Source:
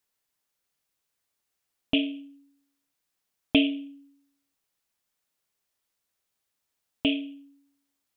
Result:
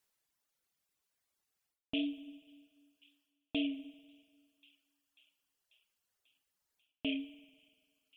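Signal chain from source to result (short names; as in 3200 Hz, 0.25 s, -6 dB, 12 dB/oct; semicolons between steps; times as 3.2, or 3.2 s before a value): wow and flutter 47 cents; reverse; compressor 6:1, threshold -33 dBFS, peak gain reduction 17 dB; reverse; thin delay 0.541 s, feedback 68%, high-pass 1900 Hz, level -21 dB; reverb removal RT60 1.9 s; on a send at -15 dB: reverb RT60 1.9 s, pre-delay 48 ms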